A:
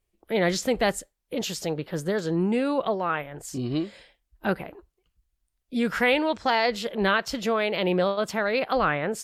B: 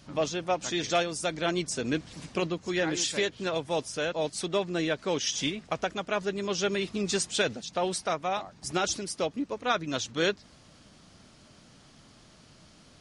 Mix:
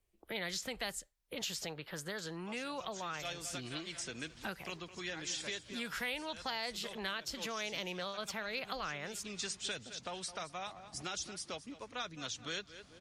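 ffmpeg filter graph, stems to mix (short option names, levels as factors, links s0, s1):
-filter_complex "[0:a]volume=0.708,asplit=2[s0][s1];[1:a]adelay=2300,volume=0.501,asplit=2[s2][s3];[s3]volume=0.133[s4];[s1]apad=whole_len=674934[s5];[s2][s5]sidechaincompress=threshold=0.0178:ratio=8:attack=9.6:release=133[s6];[s4]aecho=0:1:212|424|636|848|1060:1|0.32|0.102|0.0328|0.0105[s7];[s0][s6][s7]amix=inputs=3:normalize=0,acrossover=split=130|910|3100|7000[s8][s9][s10][s11][s12];[s8]acompressor=threshold=0.00141:ratio=4[s13];[s9]acompressor=threshold=0.00355:ratio=4[s14];[s10]acompressor=threshold=0.00631:ratio=4[s15];[s11]acompressor=threshold=0.00891:ratio=4[s16];[s12]acompressor=threshold=0.00355:ratio=4[s17];[s13][s14][s15][s16][s17]amix=inputs=5:normalize=0"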